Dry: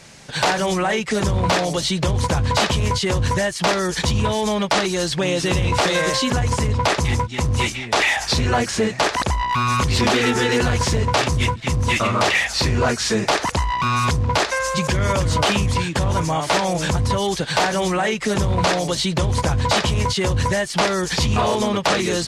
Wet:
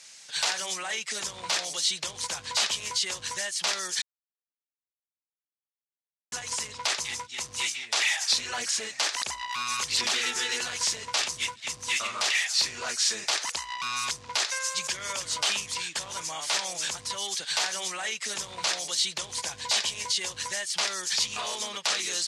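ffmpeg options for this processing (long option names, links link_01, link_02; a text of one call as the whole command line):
ffmpeg -i in.wav -filter_complex "[0:a]asplit=3[link_01][link_02][link_03];[link_01]afade=type=out:start_time=8.01:duration=0.02[link_04];[link_02]aphaser=in_gain=1:out_gain=1:delay=3.9:decay=0.28:speed=1.5:type=sinusoidal,afade=type=in:start_time=8.01:duration=0.02,afade=type=out:start_time=10.12:duration=0.02[link_05];[link_03]afade=type=in:start_time=10.12:duration=0.02[link_06];[link_04][link_05][link_06]amix=inputs=3:normalize=0,asettb=1/sr,asplit=3[link_07][link_08][link_09];[link_07]atrim=end=19.384[link_10];[link_08]atrim=start=19.38:end=20.28,asetpts=PTS-STARTPTS,afade=type=in:duration=0.004:curve=qsin,afade=type=out:start_time=0.896:duration=0.004:curve=qsin,bandreject=frequency=1300:width=6.1[link_11];[link_09]atrim=start=20.276[link_12];[link_10][link_11]acrossfade=duration=0.004:curve1=hsin:curve2=qsin[link_13];[link_13][link_12]acrossfade=duration=0.004:curve1=qsin:curve2=hsin,asplit=3[link_14][link_15][link_16];[link_14]atrim=end=4.02,asetpts=PTS-STARTPTS,afade=type=out:start_time=4.016:duration=0.004:curve=hsin[link_17];[link_15]atrim=start=4.02:end=6.32,asetpts=PTS-STARTPTS,volume=0[link_18];[link_16]atrim=start=6.32,asetpts=PTS-STARTPTS,afade=type=in:duration=0.004:curve=hsin[link_19];[link_17][link_18][link_19]concat=n=3:v=0:a=1,lowpass=7600,aderivative,volume=2.5dB" out.wav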